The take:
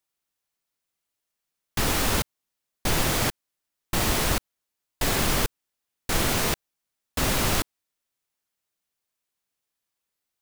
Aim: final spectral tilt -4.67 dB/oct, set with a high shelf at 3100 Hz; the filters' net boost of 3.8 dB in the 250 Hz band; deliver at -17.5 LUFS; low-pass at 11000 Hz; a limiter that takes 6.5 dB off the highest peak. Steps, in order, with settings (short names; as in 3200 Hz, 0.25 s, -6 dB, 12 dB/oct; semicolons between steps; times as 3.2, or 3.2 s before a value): LPF 11000 Hz; bell 250 Hz +5 dB; high shelf 3100 Hz -8 dB; gain +11.5 dB; limiter -5 dBFS